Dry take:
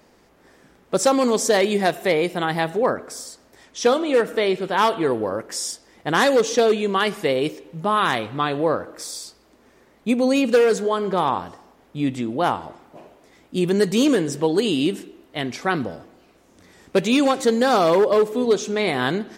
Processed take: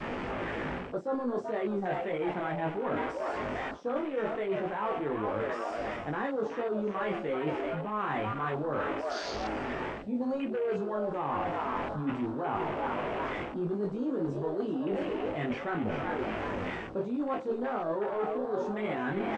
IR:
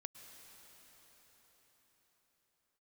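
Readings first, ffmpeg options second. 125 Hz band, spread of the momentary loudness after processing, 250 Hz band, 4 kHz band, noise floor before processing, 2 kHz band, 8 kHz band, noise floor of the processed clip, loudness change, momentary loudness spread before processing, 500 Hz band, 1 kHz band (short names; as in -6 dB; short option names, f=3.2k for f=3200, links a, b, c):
-8.0 dB, 3 LU, -10.5 dB, -19.0 dB, -56 dBFS, -11.0 dB, under -25 dB, -39 dBFS, -12.5 dB, 13 LU, -12.0 dB, -9.5 dB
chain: -filter_complex "[0:a]aeval=exprs='val(0)+0.5*0.0562*sgn(val(0))':c=same,asplit=2[a][b];[b]adelay=28,volume=-10dB[c];[a][c]amix=inputs=2:normalize=0,acrossover=split=340|1300[d][e][f];[f]volume=26.5dB,asoftclip=hard,volume=-26.5dB[g];[d][e][g]amix=inputs=3:normalize=0,asplit=6[h][i][j][k][l][m];[i]adelay=385,afreqshift=130,volume=-9dB[n];[j]adelay=770,afreqshift=260,volume=-16.1dB[o];[k]adelay=1155,afreqshift=390,volume=-23.3dB[p];[l]adelay=1540,afreqshift=520,volume=-30.4dB[q];[m]adelay=1925,afreqshift=650,volume=-37.5dB[r];[h][n][o][p][q][r]amix=inputs=6:normalize=0,flanger=delay=18.5:depth=2.1:speed=1.9,adynamicequalizer=threshold=0.0251:dfrequency=530:dqfactor=2.3:tfrequency=530:tqfactor=2.3:attack=5:release=100:ratio=0.375:range=1.5:mode=cutabove:tftype=bell,areverse,acompressor=threshold=-28dB:ratio=20,areverse,lowpass=4.4k,afwtdn=0.00891" -ar 32000 -c:a mp2 -b:a 128k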